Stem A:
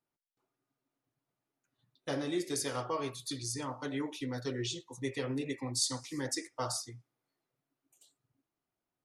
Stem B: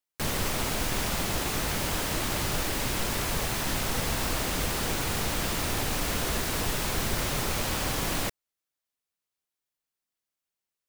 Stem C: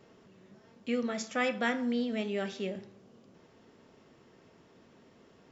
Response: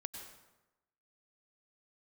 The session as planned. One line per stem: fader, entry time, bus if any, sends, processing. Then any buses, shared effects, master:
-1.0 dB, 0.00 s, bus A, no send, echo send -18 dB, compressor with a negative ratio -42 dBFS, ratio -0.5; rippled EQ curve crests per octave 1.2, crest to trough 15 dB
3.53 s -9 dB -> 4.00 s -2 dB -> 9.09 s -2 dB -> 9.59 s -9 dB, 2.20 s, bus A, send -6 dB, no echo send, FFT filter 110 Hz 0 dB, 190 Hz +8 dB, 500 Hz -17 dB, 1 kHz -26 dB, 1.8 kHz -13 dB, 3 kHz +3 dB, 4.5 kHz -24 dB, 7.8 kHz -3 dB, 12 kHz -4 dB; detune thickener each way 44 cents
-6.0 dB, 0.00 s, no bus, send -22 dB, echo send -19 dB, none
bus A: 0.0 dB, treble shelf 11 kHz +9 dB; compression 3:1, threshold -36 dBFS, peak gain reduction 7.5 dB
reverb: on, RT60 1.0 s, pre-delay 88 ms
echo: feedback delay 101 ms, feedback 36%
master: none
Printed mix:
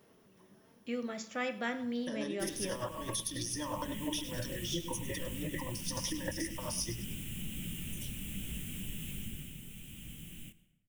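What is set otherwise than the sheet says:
stem A -1.0 dB -> +6.5 dB; stem B -9.0 dB -> -16.5 dB

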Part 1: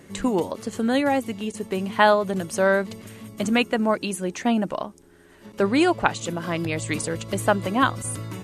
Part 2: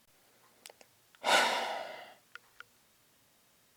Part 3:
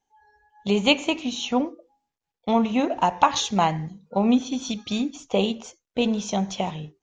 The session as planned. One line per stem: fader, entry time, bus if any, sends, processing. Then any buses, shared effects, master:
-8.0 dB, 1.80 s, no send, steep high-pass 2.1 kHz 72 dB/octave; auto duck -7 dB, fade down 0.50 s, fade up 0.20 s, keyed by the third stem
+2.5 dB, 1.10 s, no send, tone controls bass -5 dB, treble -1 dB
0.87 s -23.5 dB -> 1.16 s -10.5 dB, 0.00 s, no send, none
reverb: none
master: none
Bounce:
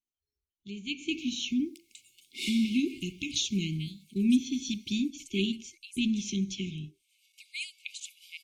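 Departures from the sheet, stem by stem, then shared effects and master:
stem 2 +2.5 dB -> -4.5 dB; stem 3 -23.5 dB -> -17.0 dB; master: extra brick-wall FIR band-stop 400–2100 Hz

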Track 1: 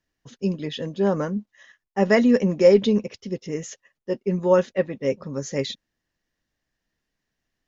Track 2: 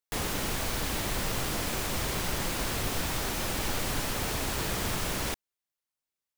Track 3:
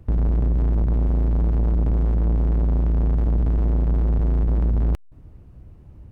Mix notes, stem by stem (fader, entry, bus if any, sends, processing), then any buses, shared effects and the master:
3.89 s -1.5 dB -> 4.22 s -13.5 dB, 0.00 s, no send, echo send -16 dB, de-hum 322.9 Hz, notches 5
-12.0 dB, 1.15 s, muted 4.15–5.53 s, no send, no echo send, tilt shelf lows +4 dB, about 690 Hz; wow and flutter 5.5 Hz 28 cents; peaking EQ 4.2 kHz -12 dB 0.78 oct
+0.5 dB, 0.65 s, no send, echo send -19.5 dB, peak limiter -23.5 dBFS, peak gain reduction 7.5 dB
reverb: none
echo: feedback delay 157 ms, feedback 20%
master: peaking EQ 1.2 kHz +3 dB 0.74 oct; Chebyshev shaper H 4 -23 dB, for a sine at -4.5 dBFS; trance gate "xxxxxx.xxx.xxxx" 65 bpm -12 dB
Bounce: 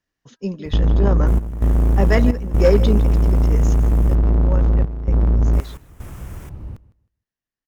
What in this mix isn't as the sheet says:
stem 2: missing tilt shelf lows +4 dB, about 690 Hz; stem 3 +0.5 dB -> +11.0 dB

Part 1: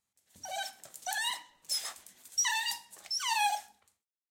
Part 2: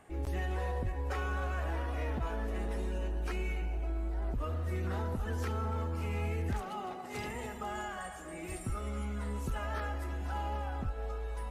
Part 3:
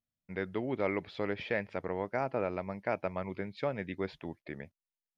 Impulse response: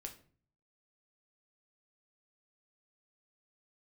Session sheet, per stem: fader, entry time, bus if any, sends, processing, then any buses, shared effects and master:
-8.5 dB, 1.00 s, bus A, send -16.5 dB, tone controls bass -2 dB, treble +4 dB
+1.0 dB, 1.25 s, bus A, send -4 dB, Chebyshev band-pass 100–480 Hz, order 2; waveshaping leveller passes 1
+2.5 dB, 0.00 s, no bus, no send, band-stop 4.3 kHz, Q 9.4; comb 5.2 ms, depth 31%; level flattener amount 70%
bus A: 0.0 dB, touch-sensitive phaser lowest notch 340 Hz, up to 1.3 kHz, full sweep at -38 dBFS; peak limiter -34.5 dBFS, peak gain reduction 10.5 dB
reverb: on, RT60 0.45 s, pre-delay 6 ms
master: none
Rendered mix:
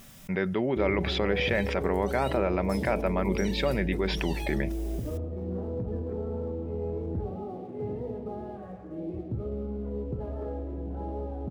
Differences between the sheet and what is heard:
stem 2: entry 1.25 s -> 0.65 s; reverb return +8.0 dB

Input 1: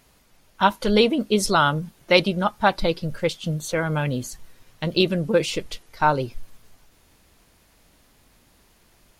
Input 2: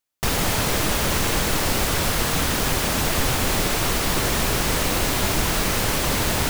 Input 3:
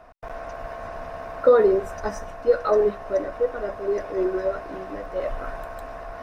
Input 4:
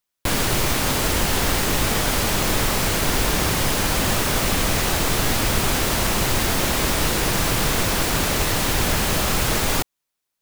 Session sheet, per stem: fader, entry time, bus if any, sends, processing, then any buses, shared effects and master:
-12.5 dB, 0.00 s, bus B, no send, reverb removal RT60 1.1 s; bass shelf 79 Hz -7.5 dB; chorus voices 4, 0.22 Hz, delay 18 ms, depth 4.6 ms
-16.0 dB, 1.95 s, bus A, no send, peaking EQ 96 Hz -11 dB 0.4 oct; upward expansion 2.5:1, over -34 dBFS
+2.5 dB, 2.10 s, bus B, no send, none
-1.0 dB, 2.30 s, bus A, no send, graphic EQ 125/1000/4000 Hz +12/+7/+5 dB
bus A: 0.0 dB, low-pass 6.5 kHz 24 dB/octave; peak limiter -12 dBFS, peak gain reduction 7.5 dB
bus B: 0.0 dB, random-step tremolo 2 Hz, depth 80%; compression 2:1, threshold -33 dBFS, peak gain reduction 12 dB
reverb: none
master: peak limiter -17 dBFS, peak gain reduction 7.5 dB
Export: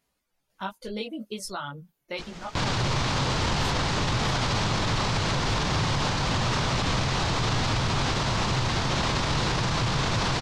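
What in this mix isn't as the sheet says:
stem 1 -12.5 dB -> -3.0 dB; stem 3: muted

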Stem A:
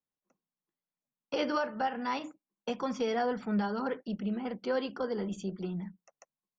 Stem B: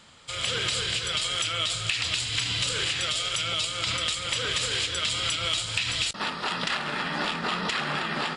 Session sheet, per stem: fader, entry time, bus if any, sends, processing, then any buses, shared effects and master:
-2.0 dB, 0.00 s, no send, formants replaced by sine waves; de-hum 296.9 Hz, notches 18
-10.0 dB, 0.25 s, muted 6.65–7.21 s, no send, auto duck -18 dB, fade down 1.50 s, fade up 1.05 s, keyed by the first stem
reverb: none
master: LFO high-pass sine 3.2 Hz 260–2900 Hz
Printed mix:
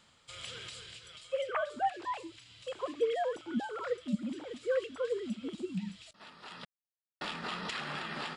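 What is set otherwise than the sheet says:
stem B: entry 0.25 s -> 0.00 s; master: missing LFO high-pass sine 3.2 Hz 260–2900 Hz

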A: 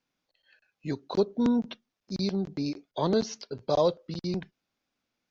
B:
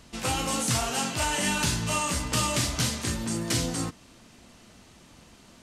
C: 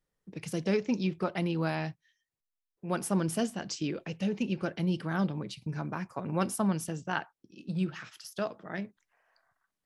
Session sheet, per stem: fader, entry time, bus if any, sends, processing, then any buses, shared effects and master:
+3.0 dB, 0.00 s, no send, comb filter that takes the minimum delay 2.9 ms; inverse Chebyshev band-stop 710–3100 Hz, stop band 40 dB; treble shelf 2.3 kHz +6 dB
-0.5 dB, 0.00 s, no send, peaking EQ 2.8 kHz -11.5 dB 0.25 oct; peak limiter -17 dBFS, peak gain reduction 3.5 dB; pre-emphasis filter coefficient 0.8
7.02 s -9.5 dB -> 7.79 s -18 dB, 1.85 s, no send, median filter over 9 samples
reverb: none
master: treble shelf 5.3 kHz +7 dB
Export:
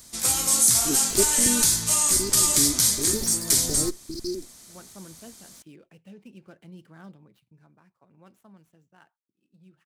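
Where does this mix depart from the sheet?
stem B -0.5 dB -> +8.5 dB; stem C -9.5 dB -> -16.0 dB

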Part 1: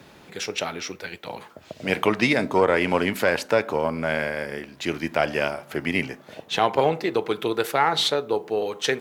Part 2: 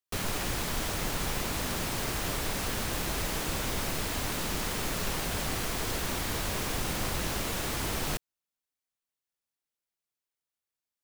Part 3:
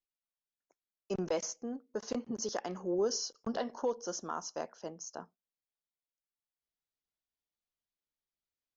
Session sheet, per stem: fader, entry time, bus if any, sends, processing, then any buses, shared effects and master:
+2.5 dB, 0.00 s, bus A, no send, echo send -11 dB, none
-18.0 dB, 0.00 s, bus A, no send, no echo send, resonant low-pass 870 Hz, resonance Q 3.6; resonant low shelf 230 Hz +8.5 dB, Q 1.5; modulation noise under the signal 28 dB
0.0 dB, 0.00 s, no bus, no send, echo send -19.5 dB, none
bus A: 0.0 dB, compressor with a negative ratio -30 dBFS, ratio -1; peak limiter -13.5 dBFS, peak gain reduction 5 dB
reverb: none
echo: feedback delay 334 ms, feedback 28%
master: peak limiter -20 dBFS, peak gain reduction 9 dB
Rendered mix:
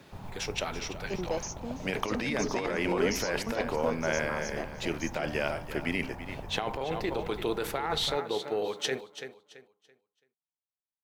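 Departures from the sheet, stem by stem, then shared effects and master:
stem 1 +2.5 dB -> -7.0 dB; master: missing peak limiter -20 dBFS, peak gain reduction 9 dB

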